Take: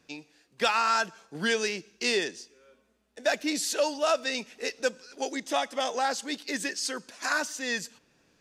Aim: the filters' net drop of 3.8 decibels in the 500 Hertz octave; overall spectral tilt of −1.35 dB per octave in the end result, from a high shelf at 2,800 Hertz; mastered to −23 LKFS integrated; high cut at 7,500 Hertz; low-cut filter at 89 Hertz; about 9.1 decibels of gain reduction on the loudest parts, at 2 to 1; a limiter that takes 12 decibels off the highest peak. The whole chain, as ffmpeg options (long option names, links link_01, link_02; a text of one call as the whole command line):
ffmpeg -i in.wav -af "highpass=89,lowpass=7500,equalizer=frequency=500:width_type=o:gain=-5,highshelf=frequency=2800:gain=6.5,acompressor=threshold=-37dB:ratio=2,volume=17dB,alimiter=limit=-12.5dB:level=0:latency=1" out.wav